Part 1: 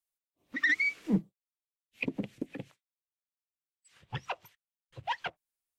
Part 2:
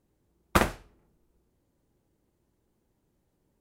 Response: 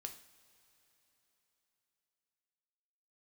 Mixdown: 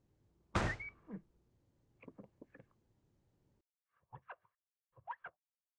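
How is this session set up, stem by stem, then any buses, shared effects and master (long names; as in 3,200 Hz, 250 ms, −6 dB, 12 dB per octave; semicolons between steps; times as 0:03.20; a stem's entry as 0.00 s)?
−19.5 dB, 0.00 s, no send, comb filter 1.8 ms, depth 34%; low-pass on a step sequencer 4.5 Hz 850–1,700 Hz
−5.0 dB, 0.00 s, no send, low-pass filter 7,200 Hz 24 dB per octave; parametric band 110 Hz +8.5 dB 0.73 octaves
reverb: not used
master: brickwall limiter −22 dBFS, peak gain reduction 12 dB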